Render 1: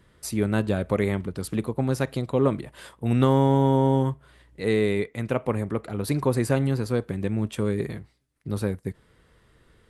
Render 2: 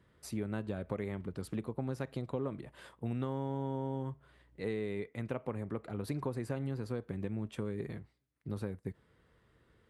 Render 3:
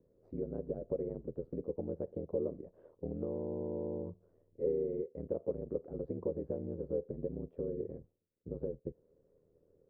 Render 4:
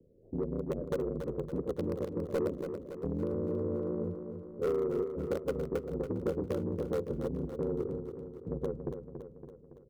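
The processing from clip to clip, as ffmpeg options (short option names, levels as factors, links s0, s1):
-af "acompressor=threshold=0.0562:ratio=6,highpass=54,highshelf=f=4100:g=-8.5,volume=0.422"
-af "lowpass=f=480:t=q:w=5,aeval=exprs='val(0)*sin(2*PI*40*n/s)':c=same,volume=0.631"
-filter_complex "[0:a]acrossover=split=150|610[s0][s1][s2];[s2]acrusher=bits=4:dc=4:mix=0:aa=0.000001[s3];[s0][s1][s3]amix=inputs=3:normalize=0,asoftclip=type=tanh:threshold=0.0251,aecho=1:1:281|562|843|1124|1405|1686|1967:0.398|0.223|0.125|0.0699|0.0392|0.0219|0.0123,volume=2.37"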